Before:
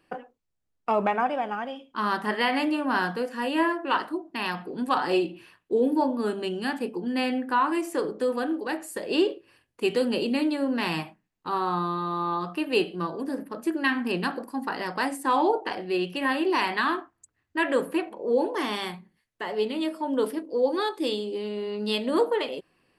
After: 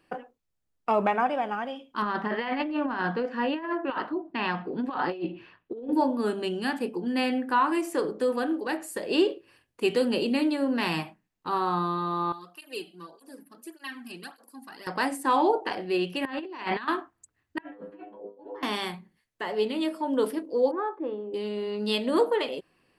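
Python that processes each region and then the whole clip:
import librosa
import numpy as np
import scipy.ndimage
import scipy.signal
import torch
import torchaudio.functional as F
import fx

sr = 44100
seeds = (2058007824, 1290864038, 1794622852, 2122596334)

y = fx.chain(x, sr, fx.air_absorb(metres=240.0),
    fx.over_compress(threshold_db=-28.0, ratio=-0.5), at=(2.02, 5.93))
y = fx.chain(y, sr, fx.pre_emphasis(coefficient=0.8),
    fx.flanger_cancel(hz=1.7, depth_ms=2.3), at=(12.32, 14.87))
y = fx.chain(y, sr, fx.notch(hz=5300.0, q=22.0),
    fx.over_compress(threshold_db=-31.0, ratio=-0.5),
    fx.air_absorb(metres=120.0), at=(16.25, 16.88))
y = fx.chain(y, sr, fx.over_compress(threshold_db=-30.0, ratio=-0.5),
    fx.spacing_loss(db_at_10k=37),
    fx.stiff_resonator(f0_hz=99.0, decay_s=0.3, stiffness=0.002), at=(17.58, 18.63))
y = fx.chain(y, sr, fx.lowpass(hz=1300.0, slope=24),
    fx.tilt_eq(slope=3.0), at=(20.71, 21.34))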